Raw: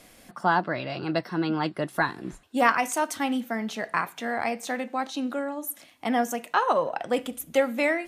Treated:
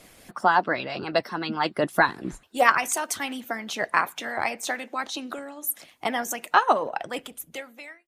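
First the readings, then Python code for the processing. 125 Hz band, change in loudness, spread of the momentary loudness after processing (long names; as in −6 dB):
−4.0 dB, +1.5 dB, 15 LU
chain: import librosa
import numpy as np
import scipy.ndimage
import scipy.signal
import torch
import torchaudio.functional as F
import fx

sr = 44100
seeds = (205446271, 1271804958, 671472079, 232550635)

y = fx.fade_out_tail(x, sr, length_s=1.55)
y = fx.hpss(y, sr, part='harmonic', gain_db=-14)
y = y * librosa.db_to_amplitude(6.0)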